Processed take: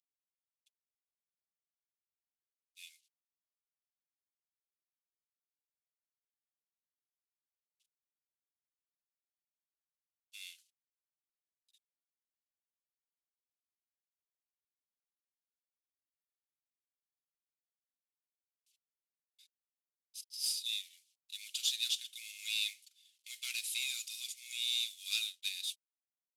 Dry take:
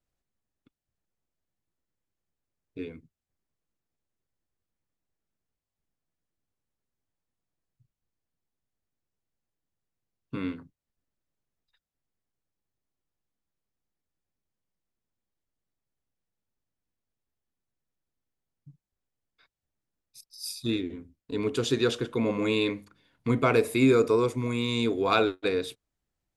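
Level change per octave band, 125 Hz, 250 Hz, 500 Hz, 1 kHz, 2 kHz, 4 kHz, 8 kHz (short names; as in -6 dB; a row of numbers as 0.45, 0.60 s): under -40 dB, under -40 dB, under -40 dB, under -40 dB, -10.0 dB, +1.0 dB, +4.0 dB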